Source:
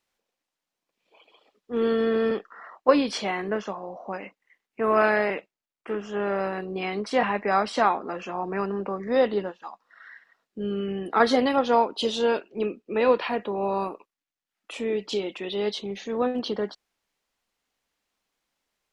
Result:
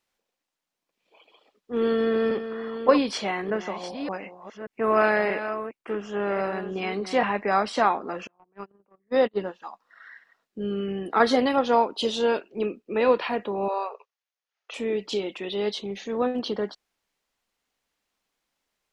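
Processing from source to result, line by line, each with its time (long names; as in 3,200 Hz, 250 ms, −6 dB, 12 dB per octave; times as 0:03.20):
0:01.76–0:07.20: delay that plays each chunk backwards 582 ms, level −10 dB
0:08.27–0:09.37: noise gate −25 dBFS, range −39 dB
0:13.68–0:14.74: linear-phase brick-wall band-pass 390–6,900 Hz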